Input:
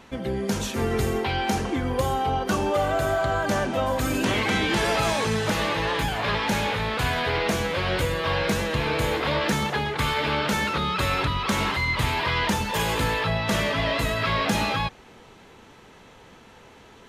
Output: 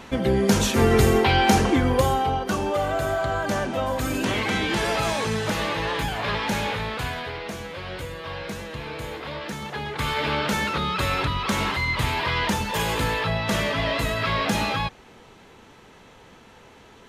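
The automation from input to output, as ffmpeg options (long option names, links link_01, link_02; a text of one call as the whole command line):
ffmpeg -i in.wav -af "volume=16dB,afade=type=out:start_time=1.68:duration=0.74:silence=0.398107,afade=type=out:start_time=6.71:duration=0.66:silence=0.398107,afade=type=in:start_time=9.6:duration=0.62:silence=0.354813" out.wav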